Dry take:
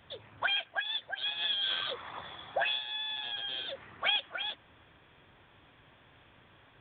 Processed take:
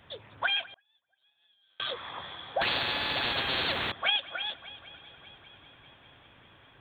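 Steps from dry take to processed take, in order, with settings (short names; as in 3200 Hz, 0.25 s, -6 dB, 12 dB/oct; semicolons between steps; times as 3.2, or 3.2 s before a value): multi-head echo 0.197 s, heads first and third, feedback 66%, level -21 dB; 0.7–1.8 flipped gate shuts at -40 dBFS, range -38 dB; 2.61–3.92 spectral compressor 4:1; gain +2 dB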